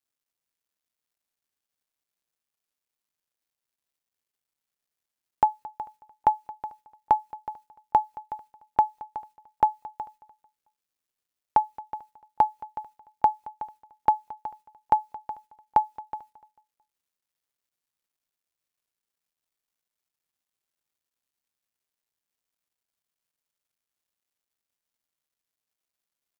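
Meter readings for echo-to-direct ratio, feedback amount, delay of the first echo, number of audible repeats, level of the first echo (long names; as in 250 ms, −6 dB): −19.5 dB, 38%, 222 ms, 2, −20.0 dB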